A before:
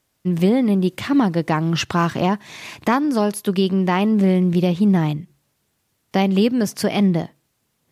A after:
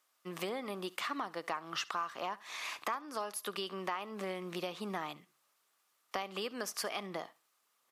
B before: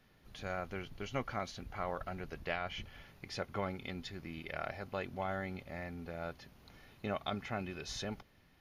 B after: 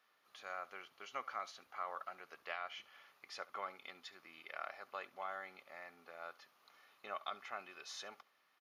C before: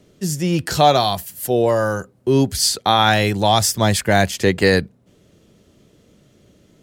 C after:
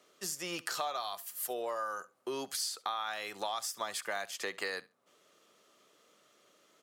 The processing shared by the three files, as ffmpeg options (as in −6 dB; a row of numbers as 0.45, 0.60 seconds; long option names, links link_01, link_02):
-af "highpass=660,equalizer=frequency=1200:width=5.3:gain=10.5,acompressor=threshold=-29dB:ratio=6,aecho=1:1:69|138:0.0891|0.0143,volume=-5.5dB"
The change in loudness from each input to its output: −20.5, −6.0, −20.0 LU